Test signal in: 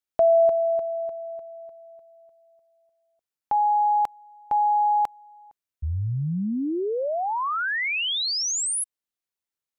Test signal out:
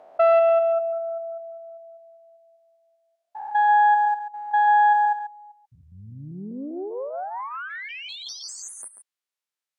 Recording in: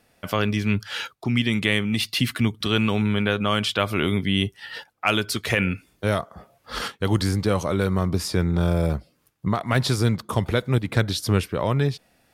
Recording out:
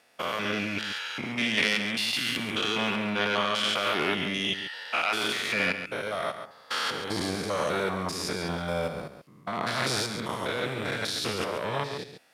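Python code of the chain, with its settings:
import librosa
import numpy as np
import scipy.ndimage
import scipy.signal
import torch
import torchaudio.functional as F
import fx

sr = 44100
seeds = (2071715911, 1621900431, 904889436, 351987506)

p1 = fx.spec_steps(x, sr, hold_ms=200)
p2 = fx.tube_stage(p1, sr, drive_db=17.0, bias=0.75)
p3 = fx.weighting(p2, sr, curve='A')
p4 = p3 + fx.echo_single(p3, sr, ms=138, db=-9.5, dry=0)
y = p4 * librosa.db_to_amplitude(7.0)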